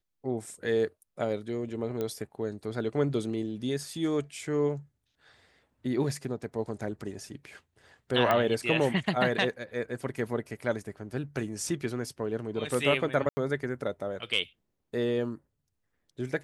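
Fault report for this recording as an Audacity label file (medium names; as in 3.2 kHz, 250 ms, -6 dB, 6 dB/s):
2.010000	2.010000	pop -20 dBFS
8.310000	8.310000	pop -13 dBFS
13.290000	13.370000	dropout 80 ms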